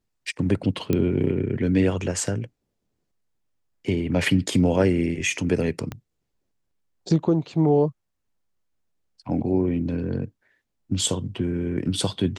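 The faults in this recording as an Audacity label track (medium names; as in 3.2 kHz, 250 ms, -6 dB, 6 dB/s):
0.930000	0.930000	pop -10 dBFS
5.920000	5.920000	pop -18 dBFS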